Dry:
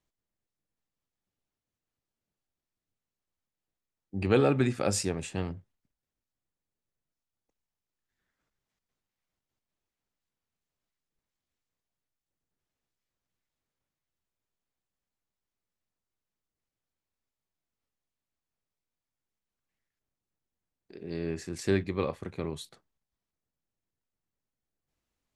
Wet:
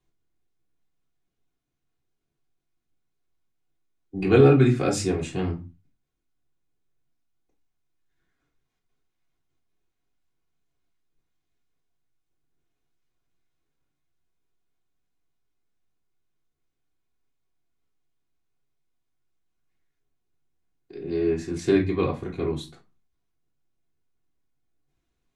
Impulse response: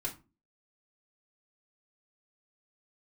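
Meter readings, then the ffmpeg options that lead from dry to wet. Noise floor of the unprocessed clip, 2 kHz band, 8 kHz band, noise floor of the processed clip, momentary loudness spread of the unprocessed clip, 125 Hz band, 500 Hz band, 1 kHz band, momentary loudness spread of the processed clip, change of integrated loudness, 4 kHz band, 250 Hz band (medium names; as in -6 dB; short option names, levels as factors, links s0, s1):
under -85 dBFS, +4.5 dB, 0.0 dB, -79 dBFS, 17 LU, +8.5 dB, +8.0 dB, +5.0 dB, 16 LU, +7.5 dB, +2.5 dB, +8.0 dB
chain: -filter_complex "[0:a]highshelf=f=7800:g=-7.5[s0];[1:a]atrim=start_sample=2205,afade=t=out:st=0.3:d=0.01,atrim=end_sample=13671[s1];[s0][s1]afir=irnorm=-1:irlink=0,volume=1.5"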